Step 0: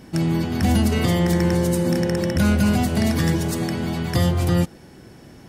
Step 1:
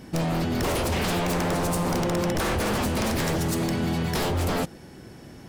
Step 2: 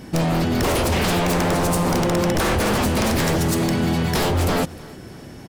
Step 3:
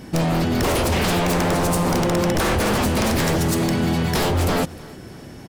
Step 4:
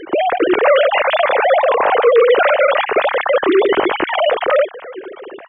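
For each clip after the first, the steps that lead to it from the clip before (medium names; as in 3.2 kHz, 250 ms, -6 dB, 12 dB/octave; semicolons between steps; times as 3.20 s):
wavefolder -20 dBFS
feedback delay 307 ms, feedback 40%, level -22 dB; trim +5.5 dB
no audible change
formants replaced by sine waves; trim +6 dB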